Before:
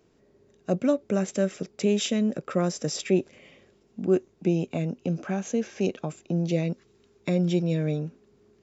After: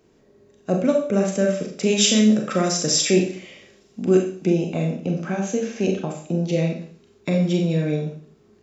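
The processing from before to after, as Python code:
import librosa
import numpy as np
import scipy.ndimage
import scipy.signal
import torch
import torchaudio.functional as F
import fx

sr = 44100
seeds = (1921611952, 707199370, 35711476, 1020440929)

y = fx.peak_eq(x, sr, hz=6500.0, db=9.0, octaves=2.7, at=(1.86, 4.47))
y = fx.rev_schroeder(y, sr, rt60_s=0.49, comb_ms=29, drr_db=1.5)
y = F.gain(torch.from_numpy(y), 3.0).numpy()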